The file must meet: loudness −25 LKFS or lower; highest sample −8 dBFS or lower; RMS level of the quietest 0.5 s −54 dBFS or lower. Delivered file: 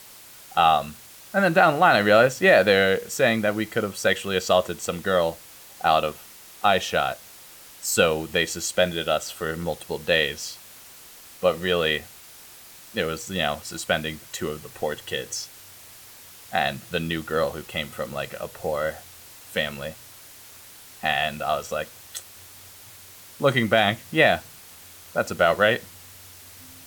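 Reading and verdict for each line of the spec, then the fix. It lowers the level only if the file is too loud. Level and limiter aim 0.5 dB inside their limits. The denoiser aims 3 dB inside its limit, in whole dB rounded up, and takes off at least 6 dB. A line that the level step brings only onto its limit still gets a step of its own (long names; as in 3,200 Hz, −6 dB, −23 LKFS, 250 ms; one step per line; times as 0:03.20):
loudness −23.0 LKFS: out of spec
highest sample −5.5 dBFS: out of spec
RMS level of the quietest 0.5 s −46 dBFS: out of spec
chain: broadband denoise 9 dB, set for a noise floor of −46 dBFS
level −2.5 dB
brickwall limiter −8.5 dBFS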